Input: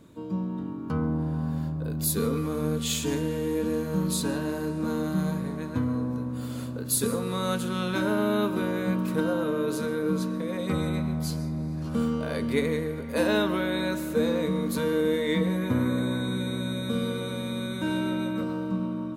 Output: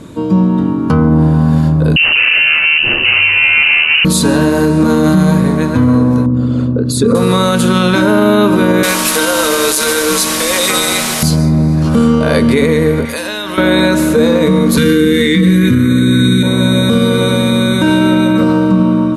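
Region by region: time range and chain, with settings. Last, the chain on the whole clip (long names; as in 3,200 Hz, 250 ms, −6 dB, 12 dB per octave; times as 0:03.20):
0:01.96–0:04.05: lower of the sound and its delayed copy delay 7.9 ms + low-shelf EQ 140 Hz +6.5 dB + voice inversion scrambler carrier 2,900 Hz
0:06.26–0:07.15: spectral envelope exaggerated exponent 1.5 + high-frequency loss of the air 100 metres
0:08.83–0:11.23: high-pass filter 250 Hz + spectral tilt +4.5 dB per octave + bit-depth reduction 6 bits, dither triangular
0:13.05–0:13.58: tilt shelving filter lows −8 dB, about 1,200 Hz + downward compressor 10 to 1, threshold −37 dBFS
0:14.77–0:16.43: Butterworth band-reject 760 Hz, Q 0.67 + envelope flattener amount 100%
whole clip: Butterworth low-pass 12,000 Hz 36 dB per octave; boost into a limiter +21.5 dB; level −1 dB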